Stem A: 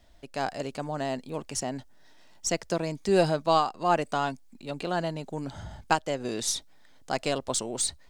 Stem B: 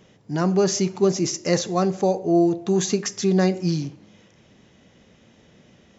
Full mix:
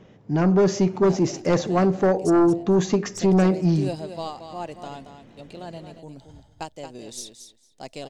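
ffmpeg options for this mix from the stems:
-filter_complex "[0:a]agate=range=0.447:threshold=0.01:ratio=16:detection=peak,equalizer=f=1400:w=1.4:g=-10,adelay=700,volume=0.447,asplit=2[s0][s1];[s1]volume=0.355[s2];[1:a]lowpass=f=1400:p=1,aeval=exprs='0.422*sin(PI/2*2*val(0)/0.422)':c=same,volume=0.531[s3];[s2]aecho=0:1:227|454|681:1|0.15|0.0225[s4];[s0][s3][s4]amix=inputs=3:normalize=0"

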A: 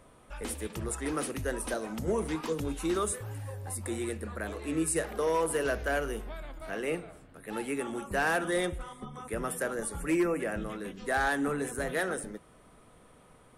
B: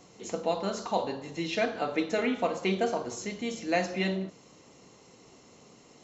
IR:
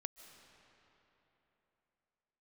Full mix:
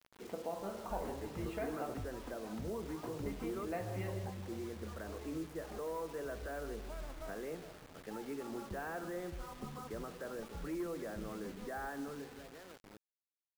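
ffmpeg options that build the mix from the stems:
-filter_complex "[0:a]alimiter=level_in=2.24:limit=0.0631:level=0:latency=1:release=260,volume=0.447,adelay=600,volume=0.596,afade=t=out:st=11.88:d=0.59:silence=0.281838,asplit=3[s0][s1][s2];[s1]volume=0.355[s3];[s2]volume=0.2[s4];[1:a]bandreject=f=47.49:t=h:w=4,bandreject=f=94.98:t=h:w=4,bandreject=f=142.47:t=h:w=4,bandreject=f=189.96:t=h:w=4,bandreject=f=237.45:t=h:w=4,bandreject=f=284.94:t=h:w=4,bandreject=f=332.43:t=h:w=4,bandreject=f=379.92:t=h:w=4,bandreject=f=427.41:t=h:w=4,bandreject=f=474.9:t=h:w=4,bandreject=f=522.39:t=h:w=4,bandreject=f=569.88:t=h:w=4,bandreject=f=617.37:t=h:w=4,bandreject=f=664.86:t=h:w=4,bandreject=f=712.35:t=h:w=4,bandreject=f=759.84:t=h:w=4,bandreject=f=807.33:t=h:w=4,bandreject=f=854.82:t=h:w=4,bandreject=f=902.31:t=h:w=4,bandreject=f=949.8:t=h:w=4,bandreject=f=997.29:t=h:w=4,bandreject=f=1044.78:t=h:w=4,bandreject=f=1092.27:t=h:w=4,bandreject=f=1139.76:t=h:w=4,bandreject=f=1187.25:t=h:w=4,bandreject=f=1234.74:t=h:w=4,bandreject=f=1282.23:t=h:w=4,asubboost=boost=8.5:cutoff=81,acompressor=threshold=0.0158:ratio=2,volume=0.531,asplit=3[s5][s6][s7];[s5]atrim=end=1.94,asetpts=PTS-STARTPTS,afade=t=out:st=1.936:d=0.004:c=hsin[s8];[s6]atrim=start=1.94:end=3.03,asetpts=PTS-STARTPTS,volume=0[s9];[s7]atrim=start=3.03,asetpts=PTS-STARTPTS,afade=t=in:d=0.004:c=hsin[s10];[s8][s9][s10]concat=n=3:v=0:a=1,asplit=3[s11][s12][s13];[s12]volume=0.178[s14];[s13]volume=0.266[s15];[2:a]atrim=start_sample=2205[s16];[s3][s14]amix=inputs=2:normalize=0[s17];[s17][s16]afir=irnorm=-1:irlink=0[s18];[s4][s15]amix=inputs=2:normalize=0,aecho=0:1:158|316|474|632|790|948|1106:1|0.47|0.221|0.104|0.0488|0.0229|0.0108[s19];[s0][s11][s18][s19]amix=inputs=4:normalize=0,lowpass=1400,acrusher=bits=8:mix=0:aa=0.000001"

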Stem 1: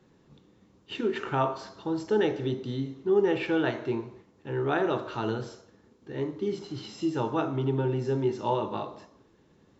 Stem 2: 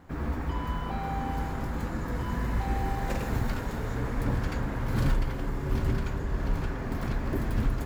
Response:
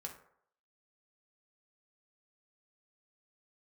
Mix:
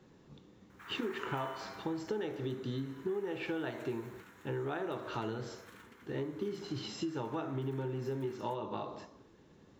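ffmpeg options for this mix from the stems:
-filter_complex "[0:a]acompressor=threshold=0.02:ratio=12,volume=1.06[s0];[1:a]highpass=f=1100:w=0.5412,highpass=f=1100:w=1.3066,equalizer=f=4800:t=o:w=0.24:g=-12.5,adelay=700,volume=0.631,afade=t=out:st=1.45:d=0.57:silence=0.237137[s1];[s0][s1]amix=inputs=2:normalize=0"

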